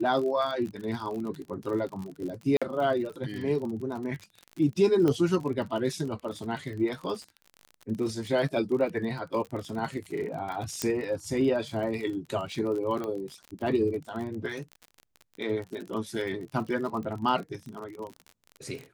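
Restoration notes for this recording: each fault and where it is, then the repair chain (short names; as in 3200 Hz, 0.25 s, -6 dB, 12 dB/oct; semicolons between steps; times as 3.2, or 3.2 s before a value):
crackle 44/s -35 dBFS
2.57–2.62 gap 46 ms
5.08 pop -16 dBFS
10.82 pop -12 dBFS
13.04 pop -22 dBFS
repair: de-click; interpolate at 2.57, 46 ms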